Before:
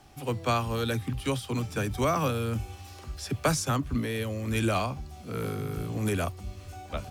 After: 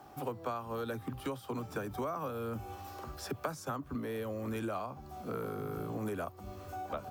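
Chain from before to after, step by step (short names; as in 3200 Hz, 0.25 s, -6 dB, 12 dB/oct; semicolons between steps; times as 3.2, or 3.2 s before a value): HPF 380 Hz 6 dB/oct; band shelf 4600 Hz -12.5 dB 2.9 oct; compressor 6:1, threshold -41 dBFS, peak gain reduction 17 dB; gain +6 dB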